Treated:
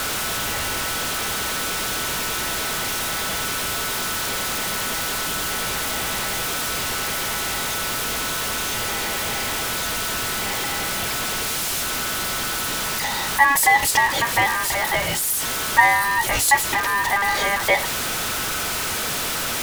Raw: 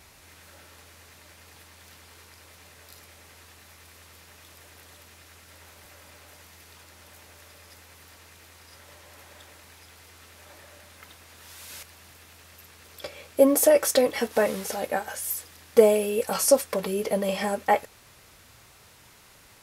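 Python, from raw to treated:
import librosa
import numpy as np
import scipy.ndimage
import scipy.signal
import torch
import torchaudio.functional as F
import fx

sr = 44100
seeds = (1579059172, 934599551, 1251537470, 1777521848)

y = x + 0.5 * 10.0 ** (-19.0 / 20.0) * np.sign(x)
y = y * np.sin(2.0 * np.pi * 1400.0 * np.arange(len(y)) / sr)
y = fx.low_shelf(y, sr, hz=190.0, db=3.0)
y = y * librosa.db_to_amplitude(2.5)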